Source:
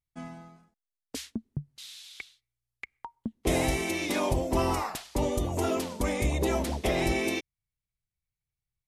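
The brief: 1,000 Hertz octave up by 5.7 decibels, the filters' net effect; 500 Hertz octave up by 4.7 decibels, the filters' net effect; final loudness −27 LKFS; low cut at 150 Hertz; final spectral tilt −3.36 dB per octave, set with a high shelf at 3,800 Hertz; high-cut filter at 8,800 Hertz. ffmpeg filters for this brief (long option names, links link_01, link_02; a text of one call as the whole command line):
ffmpeg -i in.wav -af "highpass=150,lowpass=8800,equalizer=frequency=500:width_type=o:gain=4.5,equalizer=frequency=1000:width_type=o:gain=5,highshelf=frequency=3800:gain=9,volume=-1dB" out.wav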